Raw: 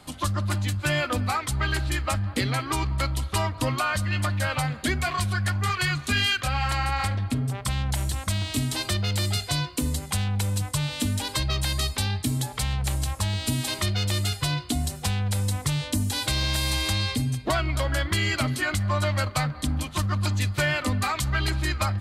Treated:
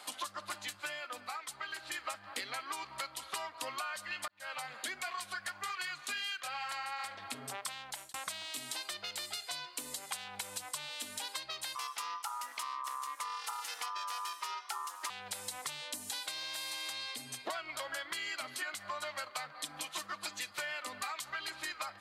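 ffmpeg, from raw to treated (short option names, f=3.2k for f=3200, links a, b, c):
-filter_complex "[0:a]asettb=1/sr,asplit=3[a][b][c];[a]atrim=end=11.754[d];[b]atrim=start=11.75:end=15.1,asetpts=PTS-STARTPTS,afade=t=in:d=0.004:c=qsin,afade=t=out:st=3.346:d=0.004:c=qsin,aeval=exprs='val(0)*sin(2*PI*1100*n/s)':c=same[e];[c]atrim=start=15.096[f];[d][e]acrossfade=d=0.004:c1=hsin:c2=qsin[g];[g][f]acrossfade=d=0.004:c1=qsin:c2=hsin,asettb=1/sr,asplit=3[h][i][j];[h]atrim=end=19.624[k];[i]atrim=start=19.62:end=20.51,asetpts=PTS-STARTPTS,afade=t=in:d=0.004:c=qsin,afade=t=out:st=0.886:d=0.004:c=qsin,aecho=1:1:6.1:0.65,atrim=end_sample=39249[l];[j]atrim=start=20.506[m];[k][l]acrossfade=d=0.004:c1=hsin:c2=qsin[n];[n][m]acrossfade=d=0.004:c1=qsin:c2=hsin,asplit=5[o][p][q][r][s];[o]atrim=end=1,asetpts=PTS-STARTPTS,afade=t=out:st=0.72:d=0.28:silence=0.281838[t];[p]atrim=start=1:end=1.82,asetpts=PTS-STARTPTS,volume=-11dB[u];[q]atrim=start=1.82:end=4.28,asetpts=PTS-STARTPTS,afade=t=in:d=0.28:silence=0.281838,afade=t=out:st=2.456:d=0.004:c=hsin[v];[r]atrim=start=4.28:end=8.14,asetpts=PTS-STARTPTS,afade=t=in:d=0.8,afade=t=out:st=3.42:d=0.44[w];[s]atrim=start=8.14,asetpts=PTS-STARTPTS,afade=t=in:d=0.004:c=hsin[x];[t][u][v][w][x]concat=n=5:v=0:a=1,highpass=700,acompressor=threshold=-40dB:ratio=6,volume=2dB"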